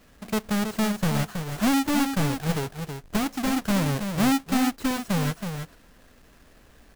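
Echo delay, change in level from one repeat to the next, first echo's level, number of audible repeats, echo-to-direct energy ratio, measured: 323 ms, repeats not evenly spaced, −7.0 dB, 1, −7.0 dB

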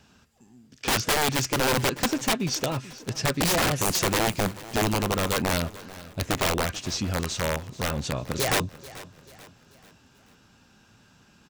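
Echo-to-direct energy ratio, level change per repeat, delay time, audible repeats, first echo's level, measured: −17.0 dB, −7.0 dB, 437 ms, 3, −18.0 dB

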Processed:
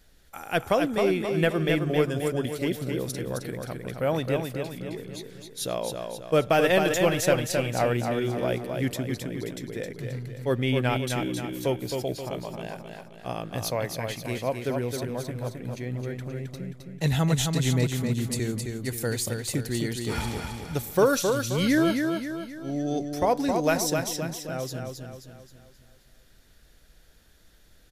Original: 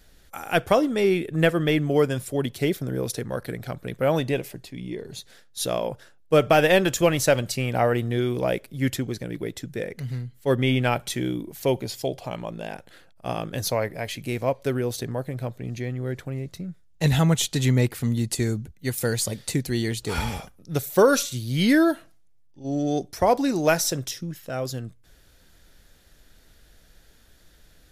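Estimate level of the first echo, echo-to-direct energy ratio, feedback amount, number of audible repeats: −5.0 dB, −4.0 dB, 46%, 5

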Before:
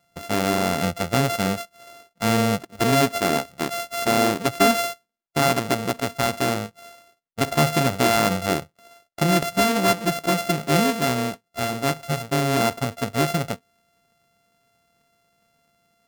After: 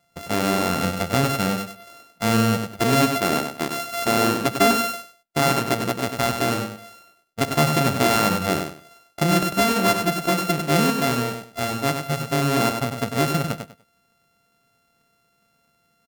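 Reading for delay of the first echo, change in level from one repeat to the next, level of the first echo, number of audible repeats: 98 ms, −13.0 dB, −6.5 dB, 3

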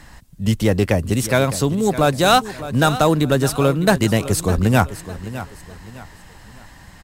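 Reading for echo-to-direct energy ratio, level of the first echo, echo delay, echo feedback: −13.5 dB, −14.0 dB, 608 ms, 35%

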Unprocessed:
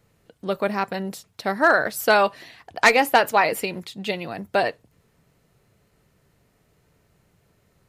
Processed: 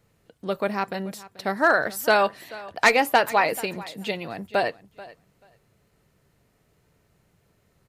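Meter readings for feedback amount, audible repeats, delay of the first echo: 16%, 2, 435 ms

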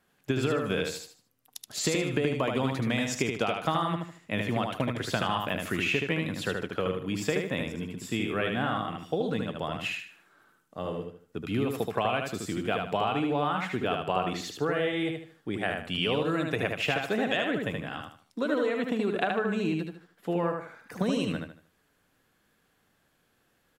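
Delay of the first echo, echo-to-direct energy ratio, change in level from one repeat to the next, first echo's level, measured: 76 ms, −3.5 dB, −10.0 dB, −4.0 dB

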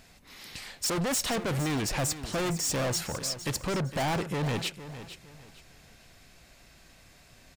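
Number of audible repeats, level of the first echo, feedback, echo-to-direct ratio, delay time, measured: 3, −13.0 dB, 29%, −12.5 dB, 459 ms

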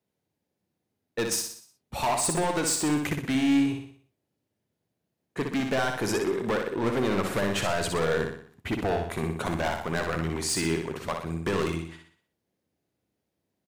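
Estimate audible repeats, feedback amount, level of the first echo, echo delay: 5, 47%, −5.0 dB, 61 ms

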